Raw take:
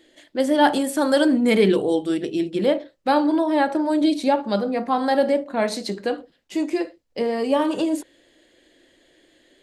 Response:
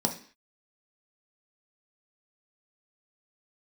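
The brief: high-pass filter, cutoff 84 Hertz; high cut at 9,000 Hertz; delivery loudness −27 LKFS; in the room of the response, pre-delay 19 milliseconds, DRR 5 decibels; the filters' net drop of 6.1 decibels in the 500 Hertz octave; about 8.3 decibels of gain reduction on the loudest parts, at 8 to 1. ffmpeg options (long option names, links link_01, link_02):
-filter_complex "[0:a]highpass=84,lowpass=9000,equalizer=frequency=500:width_type=o:gain=-7.5,acompressor=threshold=-23dB:ratio=8,asplit=2[link_01][link_02];[1:a]atrim=start_sample=2205,adelay=19[link_03];[link_02][link_03]afir=irnorm=-1:irlink=0,volume=-13dB[link_04];[link_01][link_04]amix=inputs=2:normalize=0,volume=-1.5dB"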